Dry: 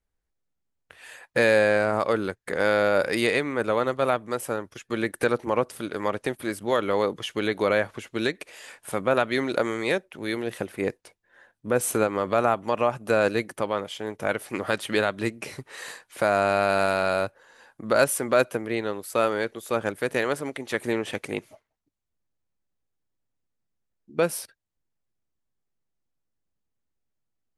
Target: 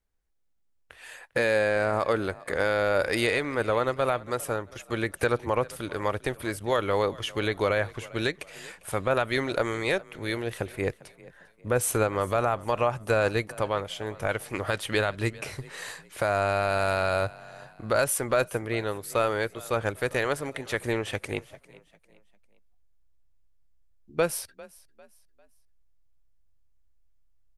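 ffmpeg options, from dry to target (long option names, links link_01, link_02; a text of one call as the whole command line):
ffmpeg -i in.wav -filter_complex "[0:a]asubboost=boost=9.5:cutoff=67,alimiter=limit=-13.5dB:level=0:latency=1,asplit=4[link_01][link_02][link_03][link_04];[link_02]adelay=399,afreqshift=32,volume=-21dB[link_05];[link_03]adelay=798,afreqshift=64,volume=-29.6dB[link_06];[link_04]adelay=1197,afreqshift=96,volume=-38.3dB[link_07];[link_01][link_05][link_06][link_07]amix=inputs=4:normalize=0" out.wav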